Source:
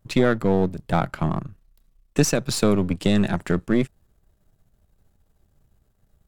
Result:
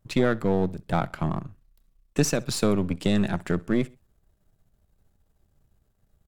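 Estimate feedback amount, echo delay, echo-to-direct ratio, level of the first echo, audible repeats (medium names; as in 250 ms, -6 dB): 37%, 64 ms, -22.5 dB, -23.0 dB, 2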